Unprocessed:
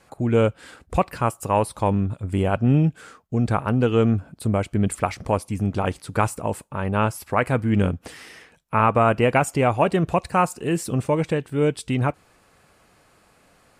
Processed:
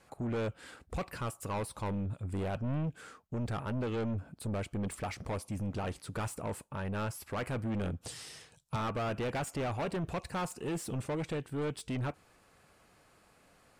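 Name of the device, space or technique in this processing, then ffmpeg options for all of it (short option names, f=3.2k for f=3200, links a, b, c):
saturation between pre-emphasis and de-emphasis: -filter_complex "[0:a]highshelf=f=5.1k:g=11.5,asoftclip=type=tanh:threshold=-24.5dB,highshelf=f=5.1k:g=-11.5,asettb=1/sr,asplit=3[a][b][c];[a]atrim=end=8.014[d];[b]atrim=start=8.01:end=8.76,asetpts=PTS-STARTPTS,afade=t=in:d=0.004:c=qsin,afade=t=out:st=0.746:d=0.004:c=qsin,equalizer=f=125:t=o:w=1:g=11,equalizer=f=250:t=o:w=1:g=-7,equalizer=f=2k:t=o:w=1:g=-7,equalizer=f=4k:t=o:w=1:g=6,equalizer=f=8k:t=o:w=1:g=9[e];[c]atrim=start=8.756[f];[d][e]acrossfade=d=0.004:c1=hsin:c2=qsin[g];[g][f]acrossfade=d=0.004:c1=qsin:c2=hsin,volume=-6.5dB"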